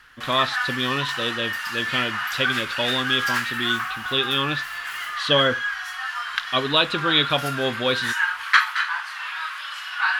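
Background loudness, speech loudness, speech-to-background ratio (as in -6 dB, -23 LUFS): -25.5 LUFS, -23.5 LUFS, 2.0 dB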